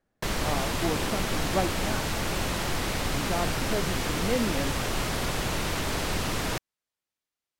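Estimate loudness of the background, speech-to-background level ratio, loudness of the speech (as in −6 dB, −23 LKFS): −29.0 LKFS, −4.5 dB, −33.5 LKFS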